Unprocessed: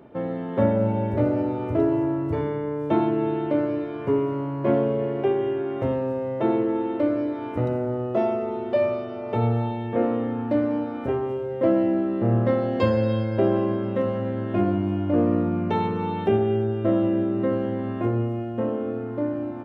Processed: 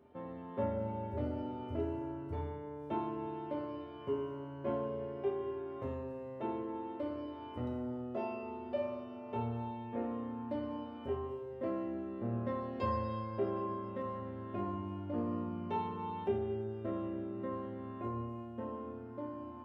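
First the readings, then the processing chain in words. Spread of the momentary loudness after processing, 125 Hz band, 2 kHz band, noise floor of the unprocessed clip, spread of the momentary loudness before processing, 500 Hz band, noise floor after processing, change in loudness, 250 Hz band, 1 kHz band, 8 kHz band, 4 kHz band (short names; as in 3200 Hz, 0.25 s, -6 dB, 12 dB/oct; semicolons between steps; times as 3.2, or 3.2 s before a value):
7 LU, -16.0 dB, -15.5 dB, -32 dBFS, 6 LU, -15.5 dB, -47 dBFS, -15.0 dB, -16.0 dB, -10.0 dB, n/a, -13.5 dB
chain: resonator 81 Hz, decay 0.61 s, harmonics odd, mix 90%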